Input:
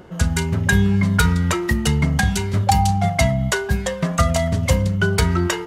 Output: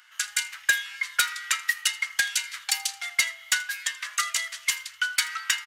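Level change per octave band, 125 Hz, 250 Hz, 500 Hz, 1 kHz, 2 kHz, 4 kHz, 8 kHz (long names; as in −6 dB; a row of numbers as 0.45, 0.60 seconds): below −40 dB, below −40 dB, −33.0 dB, −13.5 dB, −1.0 dB, +1.0 dB, +1.0 dB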